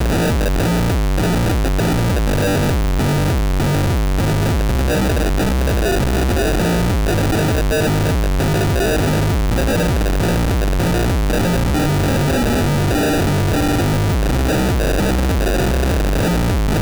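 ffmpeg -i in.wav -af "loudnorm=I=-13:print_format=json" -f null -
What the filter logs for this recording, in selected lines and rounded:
"input_i" : "-17.2",
"input_tp" : "-13.3",
"input_lra" : "0.6",
"input_thresh" : "-27.2",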